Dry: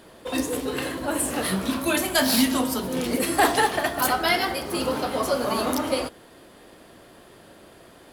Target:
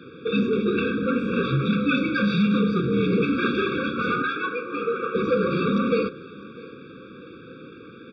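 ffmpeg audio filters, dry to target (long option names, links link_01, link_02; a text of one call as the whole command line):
ffmpeg -i in.wav -filter_complex "[0:a]asettb=1/sr,asplit=3[link_01][link_02][link_03];[link_01]atrim=end=4.224[link_04];[link_02]atrim=start=4.22:end=5.15,asetpts=PTS-STARTPTS,afade=type=in:duration=0.004:curve=qsin,afade=type=out:start_time=0.926:duration=0.004:curve=qsin,acrossover=split=490 2700:gain=0.0794 1 0.0631[link_05][link_06][link_07];[link_05][link_06][link_07]amix=inputs=3:normalize=0[link_08];[link_03]atrim=start=5.146[link_09];[link_04][link_08]acrossfade=duration=0.004:curve1=hsin:curve2=qsin[link_10];[link_10][link_09]acrossfade=duration=0.004:curve1=qsin:curve2=hsin,asoftclip=type=tanh:threshold=-23.5dB,highpass=frequency=170:width_type=q:width=0.5412,highpass=frequency=170:width_type=q:width=1.307,lowpass=frequency=3600:width_type=q:width=0.5176,lowpass=frequency=3600:width_type=q:width=0.7071,lowpass=frequency=3600:width_type=q:width=1.932,afreqshift=-55,asplit=2[link_11][link_12];[link_12]aecho=0:1:651|1302|1953:0.0841|0.0337|0.0135[link_13];[link_11][link_13]amix=inputs=2:normalize=0,afftfilt=real='re*eq(mod(floor(b*sr/1024/550),2),0)':imag='im*eq(mod(floor(b*sr/1024/550),2),0)':win_size=1024:overlap=0.75,volume=8.5dB" out.wav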